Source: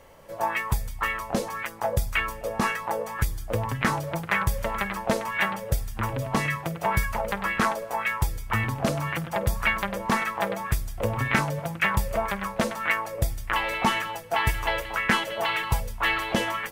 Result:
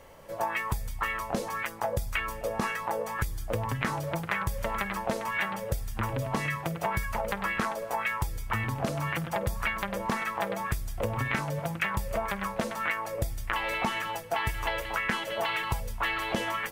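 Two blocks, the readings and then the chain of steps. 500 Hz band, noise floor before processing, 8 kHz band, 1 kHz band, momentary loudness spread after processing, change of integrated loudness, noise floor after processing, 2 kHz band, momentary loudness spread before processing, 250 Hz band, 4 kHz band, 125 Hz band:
-3.5 dB, -38 dBFS, -5.0 dB, -4.0 dB, 3 LU, -4.5 dB, -39 dBFS, -4.5 dB, 6 LU, -5.0 dB, -5.0 dB, -4.5 dB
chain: compression, threshold -26 dBFS, peak gain reduction 9.5 dB

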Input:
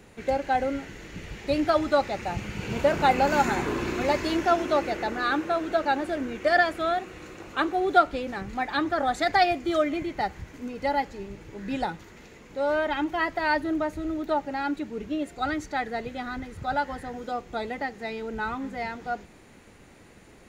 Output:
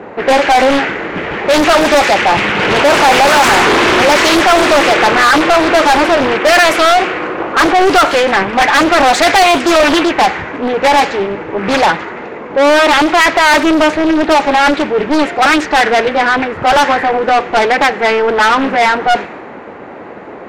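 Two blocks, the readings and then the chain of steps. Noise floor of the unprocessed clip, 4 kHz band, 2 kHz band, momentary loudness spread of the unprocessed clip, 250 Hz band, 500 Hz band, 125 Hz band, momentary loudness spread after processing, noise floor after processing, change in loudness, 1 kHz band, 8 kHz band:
-52 dBFS, +22.0 dB, +19.5 dB, 12 LU, +15.0 dB, +16.5 dB, +10.5 dB, 7 LU, -29 dBFS, +17.0 dB, +17.0 dB, +24.5 dB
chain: treble shelf 8.5 kHz +6.5 dB; level-controlled noise filter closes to 880 Hz, open at -18.5 dBFS; bass shelf 180 Hz -8 dB; overdrive pedal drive 34 dB, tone 5.7 kHz, clips at -5.5 dBFS; loudspeaker Doppler distortion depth 0.59 ms; trim +4.5 dB

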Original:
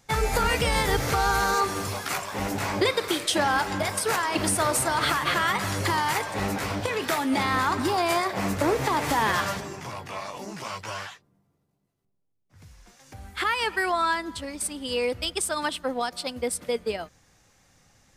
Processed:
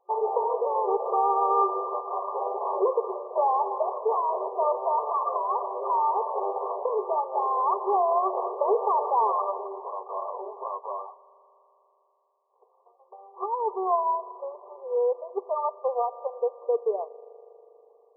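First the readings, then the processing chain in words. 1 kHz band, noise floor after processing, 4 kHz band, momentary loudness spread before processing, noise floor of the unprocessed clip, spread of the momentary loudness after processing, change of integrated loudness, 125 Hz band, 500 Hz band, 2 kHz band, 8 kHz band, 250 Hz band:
+2.0 dB, -66 dBFS, under -40 dB, 12 LU, -73 dBFS, 11 LU, -1.5 dB, under -40 dB, +2.5 dB, under -40 dB, under -40 dB, under -10 dB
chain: waveshaping leveller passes 1; FFT band-pass 370–1200 Hz; spring tank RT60 3.6 s, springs 40 ms, chirp 80 ms, DRR 17.5 dB

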